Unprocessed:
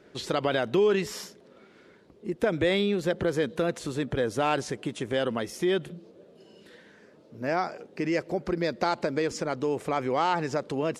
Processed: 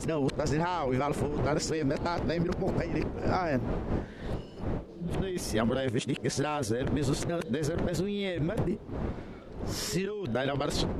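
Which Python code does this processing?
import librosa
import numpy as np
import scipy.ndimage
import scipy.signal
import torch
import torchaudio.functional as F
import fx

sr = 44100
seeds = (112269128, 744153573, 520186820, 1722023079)

y = x[::-1].copy()
y = fx.dmg_wind(y, sr, seeds[0], corner_hz=430.0, level_db=-38.0)
y = fx.low_shelf(y, sr, hz=180.0, db=6.5)
y = fx.over_compress(y, sr, threshold_db=-29.0, ratio=-1.0)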